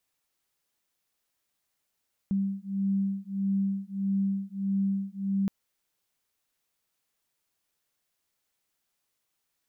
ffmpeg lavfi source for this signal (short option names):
-f lavfi -i "aevalsrc='0.0355*(sin(2*PI*195*t)+sin(2*PI*196.6*t))':d=3.17:s=44100"